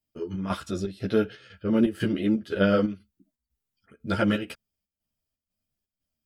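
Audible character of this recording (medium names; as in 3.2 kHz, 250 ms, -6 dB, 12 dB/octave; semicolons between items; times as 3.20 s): chopped level 2 Hz, depth 65%, duty 70%; a shimmering, thickened sound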